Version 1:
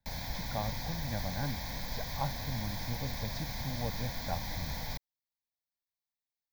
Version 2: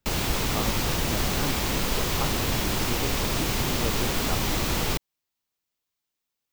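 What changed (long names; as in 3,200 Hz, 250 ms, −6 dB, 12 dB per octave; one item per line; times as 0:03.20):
background +10.5 dB
master: remove phaser with its sweep stopped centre 1,900 Hz, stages 8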